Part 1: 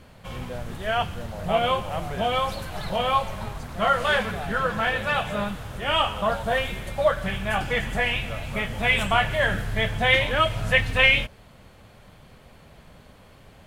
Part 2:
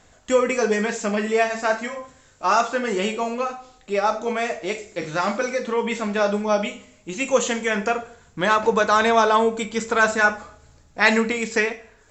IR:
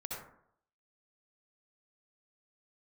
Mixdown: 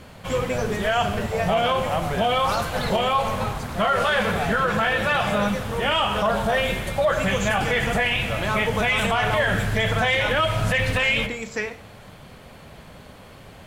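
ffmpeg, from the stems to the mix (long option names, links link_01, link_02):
-filter_complex "[0:a]lowshelf=frequency=60:gain=-7,volume=0dB,asplit=2[link_01][link_02];[link_02]volume=-13dB[link_03];[1:a]volume=-13dB[link_04];[2:a]atrim=start_sample=2205[link_05];[link_03][link_05]afir=irnorm=-1:irlink=0[link_06];[link_01][link_04][link_06]amix=inputs=3:normalize=0,acontrast=49,alimiter=limit=-13dB:level=0:latency=1:release=53"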